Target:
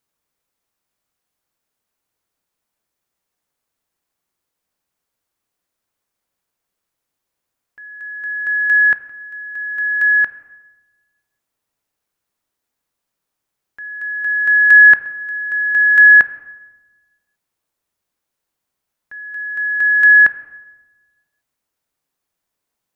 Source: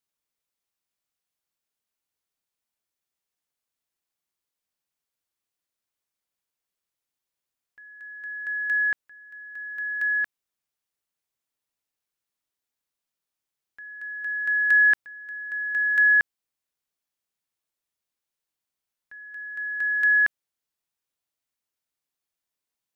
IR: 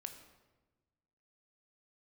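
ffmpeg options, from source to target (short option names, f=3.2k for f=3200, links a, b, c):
-filter_complex "[0:a]asplit=2[a][b];[1:a]atrim=start_sample=2205,lowpass=2.1k[c];[b][c]afir=irnorm=-1:irlink=0,volume=2dB[d];[a][d]amix=inputs=2:normalize=0,volume=7dB"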